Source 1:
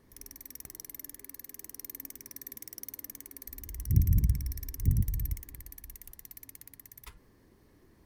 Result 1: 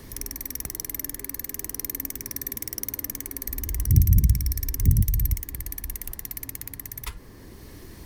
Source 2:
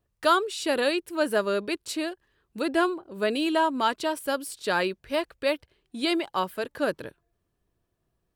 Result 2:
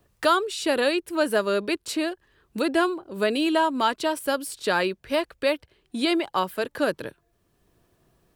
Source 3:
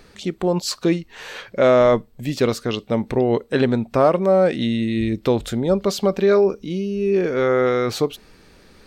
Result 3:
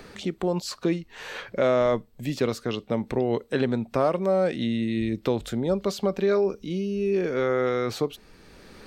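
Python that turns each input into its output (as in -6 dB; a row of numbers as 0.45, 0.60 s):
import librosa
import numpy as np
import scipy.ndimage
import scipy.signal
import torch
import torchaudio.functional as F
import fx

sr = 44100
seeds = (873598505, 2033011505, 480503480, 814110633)

y = fx.band_squash(x, sr, depth_pct=40)
y = y * 10.0 ** (-26 / 20.0) / np.sqrt(np.mean(np.square(y)))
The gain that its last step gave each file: +12.0, +2.0, -6.5 dB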